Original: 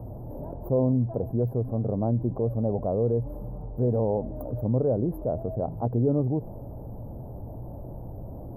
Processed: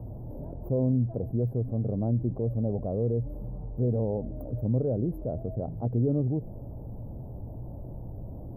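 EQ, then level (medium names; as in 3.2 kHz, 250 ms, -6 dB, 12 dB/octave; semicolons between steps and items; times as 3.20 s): bass shelf 450 Hz +8 dB; dynamic bell 1 kHz, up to -6 dB, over -46 dBFS, Q 2.1; -8.0 dB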